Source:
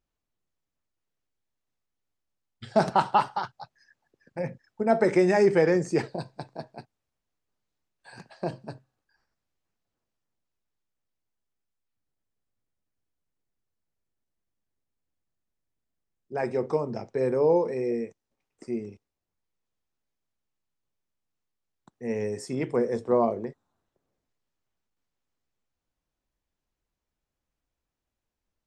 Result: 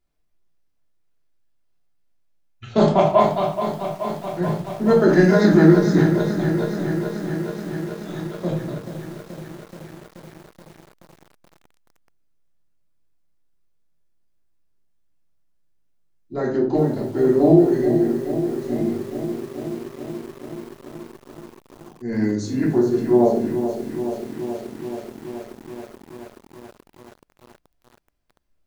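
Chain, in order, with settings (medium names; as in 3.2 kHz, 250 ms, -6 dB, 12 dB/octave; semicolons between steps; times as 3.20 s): formant shift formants -4 st; simulated room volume 440 m³, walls furnished, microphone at 3.1 m; bit-crushed delay 428 ms, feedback 80%, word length 7-bit, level -9.5 dB; trim +1 dB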